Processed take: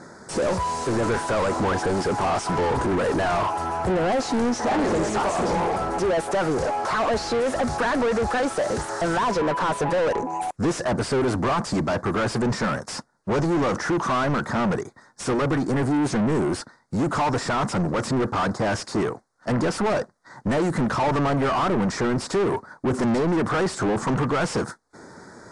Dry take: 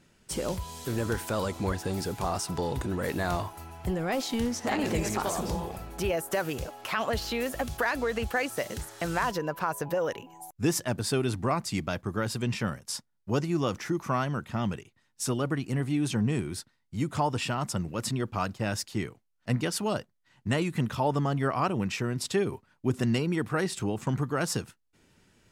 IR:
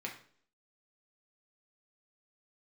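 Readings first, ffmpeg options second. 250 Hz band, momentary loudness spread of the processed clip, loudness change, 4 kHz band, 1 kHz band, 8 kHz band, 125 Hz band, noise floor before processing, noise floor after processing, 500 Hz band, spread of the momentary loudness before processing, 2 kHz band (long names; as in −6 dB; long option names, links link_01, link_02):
+6.5 dB, 5 LU, +6.5 dB, +3.0 dB, +9.0 dB, +1.5 dB, +3.0 dB, −72 dBFS, −55 dBFS, +8.5 dB, 7 LU, +6.0 dB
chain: -filter_complex "[0:a]asuperstop=centerf=2800:order=4:qfactor=0.92,asplit=2[link_01][link_02];[link_02]highpass=frequency=720:poles=1,volume=35dB,asoftclip=type=tanh:threshold=-14.5dB[link_03];[link_01][link_03]amix=inputs=2:normalize=0,lowpass=frequency=1500:poles=1,volume=-6dB" -ar 22050 -c:a aac -b:a 96k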